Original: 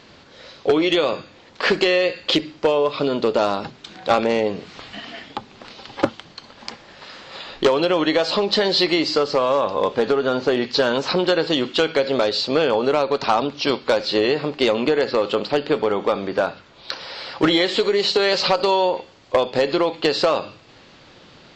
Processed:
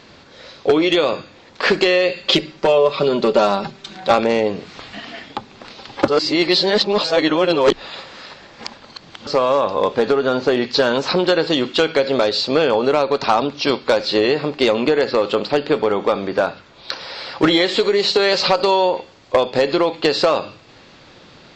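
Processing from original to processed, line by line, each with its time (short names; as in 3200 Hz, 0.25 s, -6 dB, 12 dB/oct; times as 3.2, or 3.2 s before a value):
2.08–4.11 comb 5.2 ms
6.08–9.27 reverse
whole clip: notch 3000 Hz, Q 24; gain +2.5 dB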